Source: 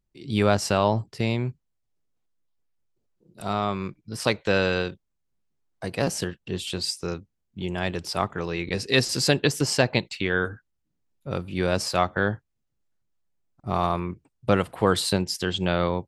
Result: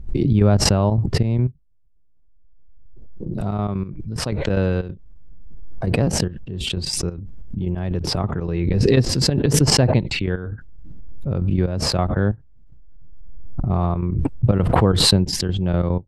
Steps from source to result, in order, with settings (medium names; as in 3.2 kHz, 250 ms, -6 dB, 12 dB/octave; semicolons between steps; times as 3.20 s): trance gate ".x.x.xx.xxx.x.x." 184 bpm -12 dB; tilt EQ -4.5 dB/octave; swell ahead of each attack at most 22 dB/s; trim -3.5 dB